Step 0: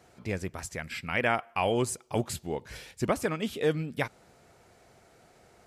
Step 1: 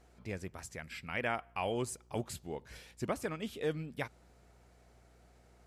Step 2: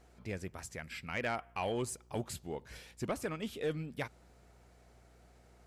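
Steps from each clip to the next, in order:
buzz 60 Hz, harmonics 33, -56 dBFS -8 dB/oct; gain -8 dB
soft clip -26.5 dBFS, distortion -17 dB; gain +1 dB

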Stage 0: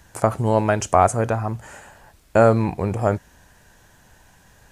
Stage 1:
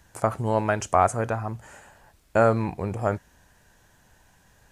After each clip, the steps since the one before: dynamic EQ 1500 Hz, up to +4 dB, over -28 dBFS, Q 0.79; gain -6 dB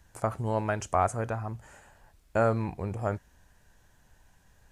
low shelf 64 Hz +10.5 dB; gain -6 dB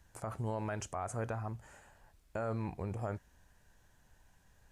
limiter -23.5 dBFS, peak gain reduction 10.5 dB; gain -4.5 dB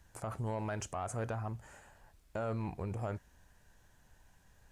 soft clip -29.5 dBFS, distortion -20 dB; gain +1.5 dB

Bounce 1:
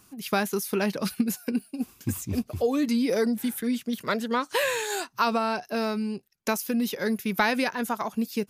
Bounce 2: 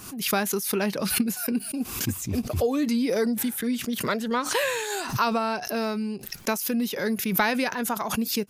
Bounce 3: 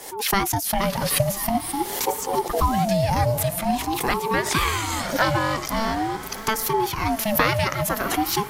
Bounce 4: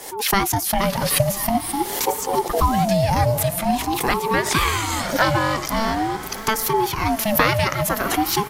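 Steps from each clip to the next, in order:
backwards sustainer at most 68 dB/s
diffused feedback echo 0.692 s, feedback 54%, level -12.5 dB; ring modulator with a swept carrier 510 Hz, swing 30%, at 0.46 Hz; gain +6 dB
echo 0.196 s -24 dB; gain +2.5 dB

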